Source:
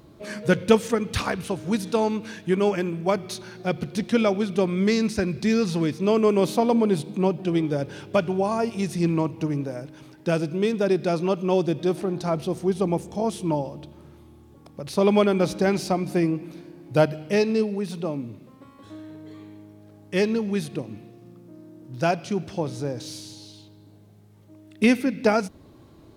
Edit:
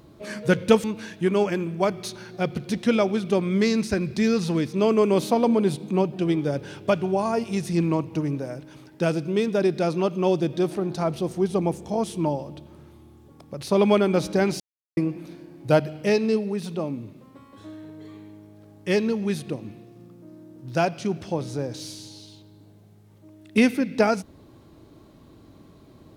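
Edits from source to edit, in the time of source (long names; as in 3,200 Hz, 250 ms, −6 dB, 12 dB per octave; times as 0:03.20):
0:00.84–0:02.10: remove
0:15.86–0:16.23: silence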